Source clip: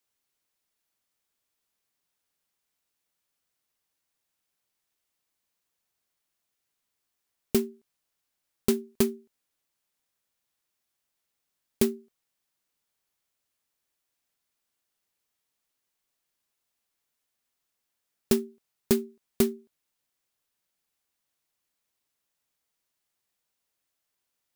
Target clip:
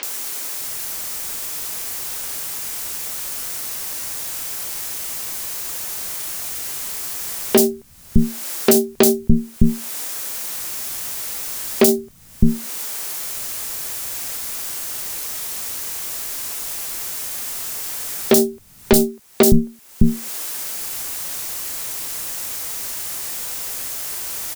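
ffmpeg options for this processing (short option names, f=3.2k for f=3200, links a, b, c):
-filter_complex "[0:a]bass=f=250:g=1,treble=f=4k:g=5,acompressor=mode=upward:threshold=-28dB:ratio=2.5,aeval=exprs='0.668*(cos(1*acos(clip(val(0)/0.668,-1,1)))-cos(1*PI/2))+0.0841*(cos(8*acos(clip(val(0)/0.668,-1,1)))-cos(8*PI/2))':c=same,acrossover=split=200|3700[a][b][c];[c]adelay=30[d];[a]adelay=610[e];[e][b][d]amix=inputs=3:normalize=0,alimiter=level_in=24dB:limit=-1dB:release=50:level=0:latency=1,volume=-1dB"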